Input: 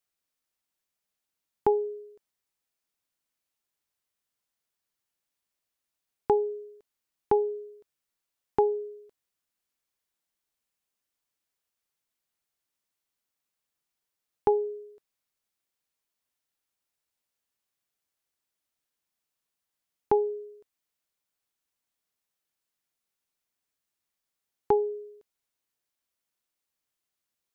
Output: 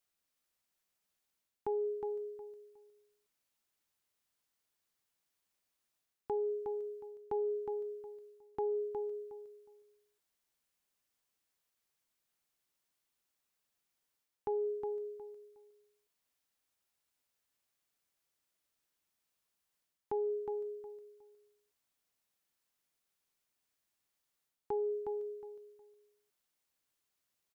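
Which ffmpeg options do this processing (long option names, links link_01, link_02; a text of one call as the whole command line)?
ffmpeg -i in.wav -af "areverse,acompressor=threshold=-33dB:ratio=10,areverse,aecho=1:1:363|726|1089:0.501|0.11|0.0243" out.wav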